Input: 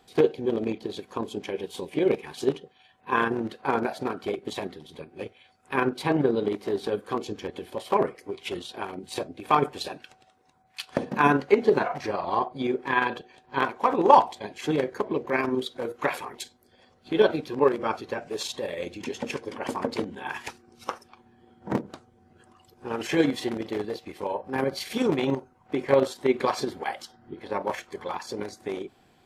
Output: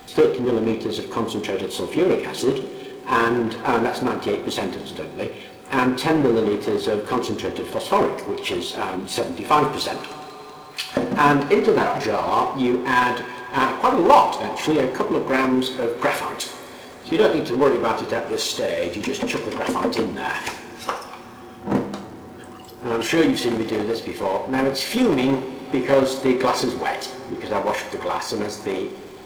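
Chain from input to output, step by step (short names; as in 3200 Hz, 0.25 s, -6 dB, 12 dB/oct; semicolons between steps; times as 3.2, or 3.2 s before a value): requantised 12-bit, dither none; two-slope reverb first 0.46 s, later 3.6 s, from -19 dB, DRR 7 dB; power-law curve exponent 0.7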